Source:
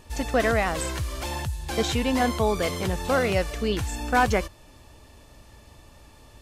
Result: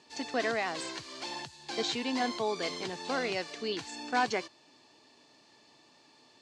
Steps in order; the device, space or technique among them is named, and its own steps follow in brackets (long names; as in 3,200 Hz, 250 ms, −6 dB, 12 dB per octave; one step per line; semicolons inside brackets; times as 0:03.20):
television speaker (loudspeaker in its box 190–7,200 Hz, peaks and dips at 200 Hz −8 dB, 550 Hz −7 dB, 1,300 Hz −5 dB, 4,400 Hz +8 dB)
level −6 dB